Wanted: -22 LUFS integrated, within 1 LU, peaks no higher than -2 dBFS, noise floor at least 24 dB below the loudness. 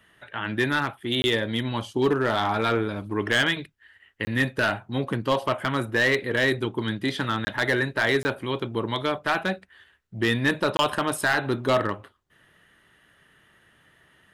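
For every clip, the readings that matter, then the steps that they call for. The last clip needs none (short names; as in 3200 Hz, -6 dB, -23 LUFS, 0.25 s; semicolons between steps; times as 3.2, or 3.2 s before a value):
clipped 0.8%; flat tops at -15.0 dBFS; dropouts 5; longest dropout 20 ms; loudness -25.0 LUFS; peak -15.0 dBFS; loudness target -22.0 LUFS
-> clip repair -15 dBFS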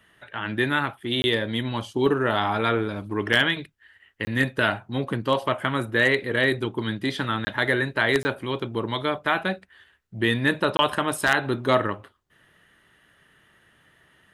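clipped 0.0%; dropouts 5; longest dropout 20 ms
-> interpolate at 1.22/4.25/7.45/8.23/10.77, 20 ms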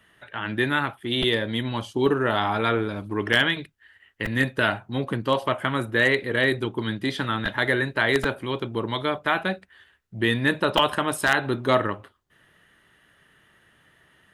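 dropouts 0; loudness -24.0 LUFS; peak -6.0 dBFS; loudness target -22.0 LUFS
-> gain +2 dB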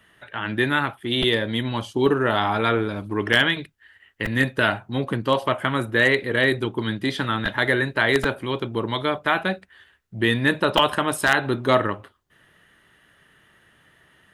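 loudness -22.0 LUFS; peak -4.0 dBFS; noise floor -59 dBFS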